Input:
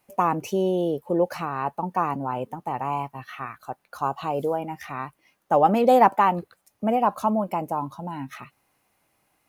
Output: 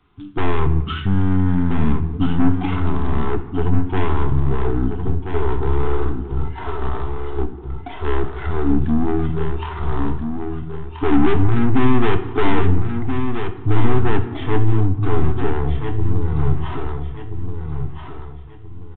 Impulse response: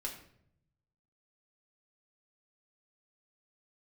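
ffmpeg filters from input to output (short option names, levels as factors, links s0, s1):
-filter_complex "[0:a]bass=f=250:g=10,treble=f=4000:g=-5,acrossover=split=380|1600[s0][s1][s2];[s2]acrusher=bits=2:mode=log:mix=0:aa=0.000001[s3];[s0][s1][s3]amix=inputs=3:normalize=0,crystalizer=i=1:c=0,aeval=exprs='(tanh(20*val(0)+0.6)-tanh(0.6))/20':c=same,asuperstop=centerf=1100:order=4:qfactor=1.9,aecho=1:1:665|1330|1995|2660:0.447|0.147|0.0486|0.0161,asplit=2[s4][s5];[1:a]atrim=start_sample=2205[s6];[s5][s6]afir=irnorm=-1:irlink=0,volume=0.841[s7];[s4][s7]amix=inputs=2:normalize=0,aresample=16000,aresample=44100,asetrate=22050,aresample=44100,volume=2.51"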